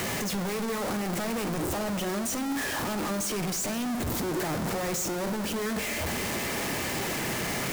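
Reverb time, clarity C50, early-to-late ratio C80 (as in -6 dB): 1.1 s, 12.0 dB, 14.0 dB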